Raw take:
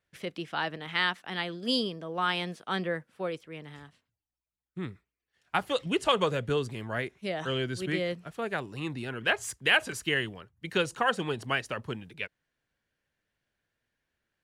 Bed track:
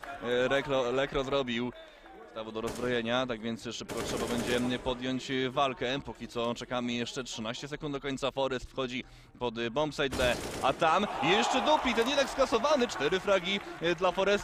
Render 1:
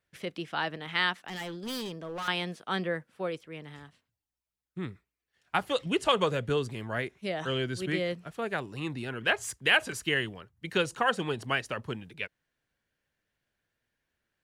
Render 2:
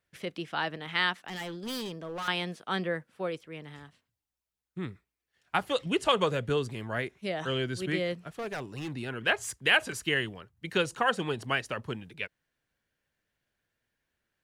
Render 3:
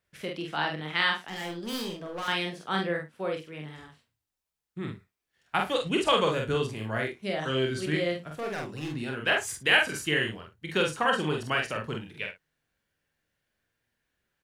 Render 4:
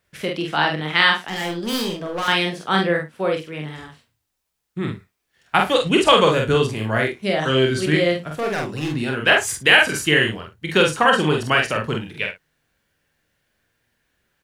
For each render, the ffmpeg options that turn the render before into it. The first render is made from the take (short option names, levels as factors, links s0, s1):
-filter_complex "[0:a]asettb=1/sr,asplit=3[s0][s1][s2];[s0]atrim=end=1.284[s3];[s1]atrim=start=1.28:end=2.28,asetpts=PTS-STARTPTS,afade=t=in:d=0.004:c=qsin,afade=t=out:st=0.996:d=0.004:c=qsin,volume=47.3,asoftclip=hard,volume=0.0211[s4];[s2]atrim=start=2.276[s5];[s3][s4]acrossfade=d=0.004:c1=hsin:c2=qsin[s6];[s6][s5]acrossfade=d=0.004:c1=qsin:c2=hsin"
-filter_complex "[0:a]asettb=1/sr,asplit=3[s0][s1][s2];[s0]atrim=end=8.284[s3];[s1]atrim=start=8.28:end=8.92,asetpts=PTS-STARTPTS,afade=t=in:d=0.004:c=qsin,afade=t=out:st=0.636:d=0.004:c=qsin,volume=39.8,asoftclip=hard,volume=0.0251[s4];[s2]atrim=start=8.916[s5];[s3][s4]acrossfade=d=0.004:c1=hsin:c2=qsin[s6];[s6][s5]acrossfade=d=0.004:c1=qsin:c2=hsin"
-filter_complex "[0:a]asplit=2[s0][s1];[s1]adelay=46,volume=0.708[s2];[s0][s2]amix=inputs=2:normalize=0,aecho=1:1:26|59:0.316|0.168"
-af "volume=3.16,alimiter=limit=0.891:level=0:latency=1"